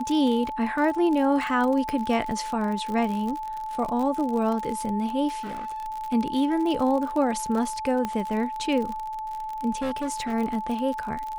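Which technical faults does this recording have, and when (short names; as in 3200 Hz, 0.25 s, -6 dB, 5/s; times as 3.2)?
crackle 43/s -29 dBFS
tone 870 Hz -30 dBFS
1.89 pop -16 dBFS
5.4–5.86 clipped -30.5 dBFS
8.05 pop -15 dBFS
9.82–10.34 clipped -24 dBFS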